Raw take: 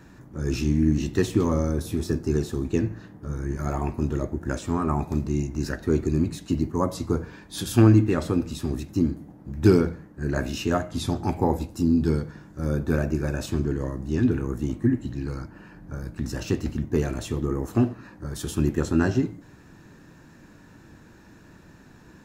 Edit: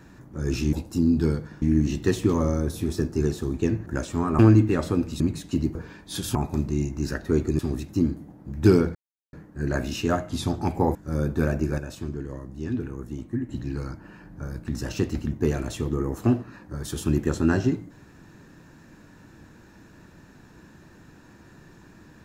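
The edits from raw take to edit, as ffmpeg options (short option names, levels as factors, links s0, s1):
-filter_complex "[0:a]asplit=13[s0][s1][s2][s3][s4][s5][s6][s7][s8][s9][s10][s11][s12];[s0]atrim=end=0.732[s13];[s1]atrim=start=11.568:end=12.462[s14];[s2]atrim=start=0.728:end=2.972[s15];[s3]atrim=start=4.398:end=4.932[s16];[s4]atrim=start=7.778:end=8.592[s17];[s5]atrim=start=6.168:end=6.722[s18];[s6]atrim=start=7.178:end=7.782[s19];[s7]atrim=start=4.928:end=6.172[s20];[s8]atrim=start=8.588:end=9.95,asetpts=PTS-STARTPTS,afade=t=out:st=1.358:d=0.004:c=hsin,apad=pad_dur=0.38[s21];[s9]atrim=start=9.95:end=11.572,asetpts=PTS-STARTPTS,afade=t=in:d=0.004:c=hsin[s22];[s10]atrim=start=12.458:end=13.292[s23];[s11]atrim=start=13.288:end=15.002,asetpts=PTS-STARTPTS,volume=0.447[s24];[s12]atrim=start=14.998[s25];[s13][s14]acrossfade=d=0.004:c1=hsin:c2=hsin[s26];[s26][s15]acrossfade=d=0.004:c1=hsin:c2=hsin[s27];[s27][s16]acrossfade=d=0.004:c1=hsin:c2=hsin[s28];[s28][s17]acrossfade=d=0.004:c1=hsin:c2=hsin[s29];[s29][s18]acrossfade=d=0.004:c1=hsin:c2=hsin[s30];[s30][s19]acrossfade=d=0.004:c1=hsin:c2=hsin[s31];[s31][s20]acrossfade=d=0.004:c1=hsin:c2=hsin[s32];[s21][s22]concat=n=2:v=0:a=1[s33];[s32][s33]acrossfade=d=0.004:c1=hsin:c2=hsin[s34];[s34][s23]acrossfade=d=0.004:c1=hsin:c2=hsin[s35];[s35][s24]acrossfade=d=0.004:c1=hsin:c2=hsin[s36];[s36][s25]acrossfade=d=0.004:c1=hsin:c2=hsin"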